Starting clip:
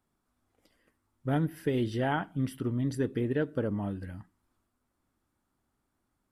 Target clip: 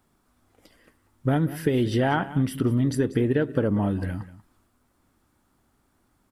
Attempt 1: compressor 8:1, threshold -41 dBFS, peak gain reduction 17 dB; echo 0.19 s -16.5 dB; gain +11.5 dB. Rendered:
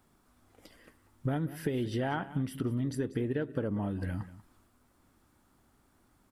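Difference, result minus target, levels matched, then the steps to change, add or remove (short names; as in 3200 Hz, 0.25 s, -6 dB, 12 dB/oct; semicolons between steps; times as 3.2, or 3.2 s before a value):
compressor: peak gain reduction +9.5 dB
change: compressor 8:1, threshold -30 dBFS, peak gain reduction 7.5 dB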